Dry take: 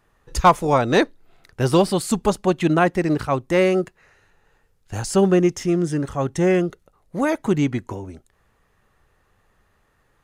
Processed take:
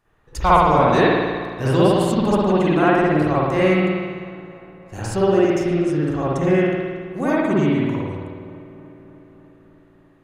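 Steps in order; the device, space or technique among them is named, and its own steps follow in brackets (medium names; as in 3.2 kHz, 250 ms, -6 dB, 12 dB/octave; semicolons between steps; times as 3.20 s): dub delay into a spring reverb (filtered feedback delay 300 ms, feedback 71%, low-pass 3.4 kHz, level -19.5 dB; spring tank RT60 1.5 s, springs 53 ms, chirp 25 ms, DRR -8.5 dB); trim -6.5 dB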